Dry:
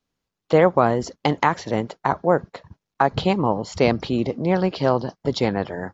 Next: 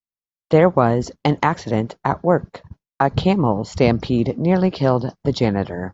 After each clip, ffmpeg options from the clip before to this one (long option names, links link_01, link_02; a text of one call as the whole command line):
ffmpeg -i in.wav -af "lowshelf=frequency=250:gain=8,agate=range=-33dB:threshold=-37dB:ratio=3:detection=peak" out.wav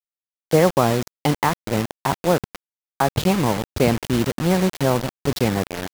ffmpeg -i in.wav -af "acrusher=bits=3:mix=0:aa=0.000001,volume=-2.5dB" out.wav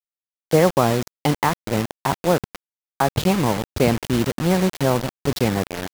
ffmpeg -i in.wav -af anull out.wav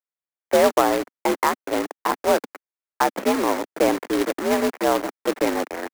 ffmpeg -i in.wav -af "highpass=frequency=210:width_type=q:width=0.5412,highpass=frequency=210:width_type=q:width=1.307,lowpass=frequency=2200:width_type=q:width=0.5176,lowpass=frequency=2200:width_type=q:width=0.7071,lowpass=frequency=2200:width_type=q:width=1.932,afreqshift=62,acrusher=bits=2:mode=log:mix=0:aa=0.000001" out.wav